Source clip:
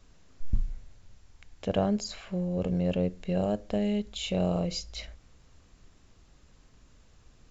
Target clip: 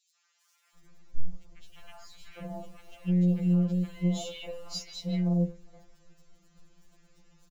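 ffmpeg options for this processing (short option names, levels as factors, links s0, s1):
-filter_complex "[0:a]asettb=1/sr,asplit=3[s0][s1][s2];[s0]atrim=end=0.624[s3];[s1]atrim=start=0.62:end=2.18,asetpts=PTS-STARTPTS,afade=t=in:d=0.004:c=qsin,afade=t=out:st=1.556:d=0.004:c=qsin,acrossover=split=3100[s4][s5];[s5]acompressor=threshold=0.00178:ratio=4:attack=1:release=60[s6];[s4][s6]amix=inputs=2:normalize=0[s7];[s2]atrim=start=2.176[s8];[s3][s7]acrossfade=d=0.004:c1=hsin:c2=qsin[s9];[s9][s8]acrossfade=d=0.004:c1=qsin:c2=hsin,lowshelf=f=68:g=-7,acrossover=split=150|1400[s10][s11][s12];[s10]acontrast=68[s13];[s13][s11][s12]amix=inputs=3:normalize=0,alimiter=limit=0.0631:level=0:latency=1:release=155,asplit=2[s14][s15];[s15]acrusher=bits=5:dc=4:mix=0:aa=0.000001,volume=0.355[s16];[s14][s16]amix=inputs=2:normalize=0,acrossover=split=980|3200[s17][s18][s19];[s18]adelay=150[s20];[s17]adelay=750[s21];[s21][s20][s19]amix=inputs=3:normalize=0,afftfilt=real='re*2.83*eq(mod(b,8),0)':imag='im*2.83*eq(mod(b,8),0)':win_size=2048:overlap=0.75"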